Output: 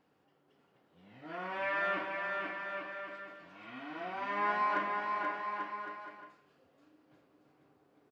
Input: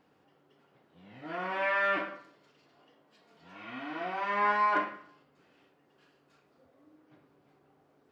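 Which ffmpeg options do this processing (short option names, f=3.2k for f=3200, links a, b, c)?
-af "aecho=1:1:480|840|1110|1312|1464:0.631|0.398|0.251|0.158|0.1,volume=-5dB"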